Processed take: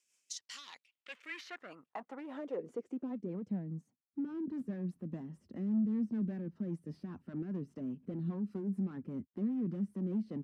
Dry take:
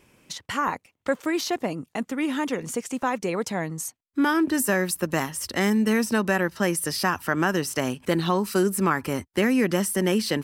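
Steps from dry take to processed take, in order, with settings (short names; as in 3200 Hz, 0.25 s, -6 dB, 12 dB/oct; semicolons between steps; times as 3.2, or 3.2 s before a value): overloaded stage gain 24 dB; band-pass sweep 6800 Hz -> 200 Hz, 0.26–3.38; rotary speaker horn 5 Hz; gain -2.5 dB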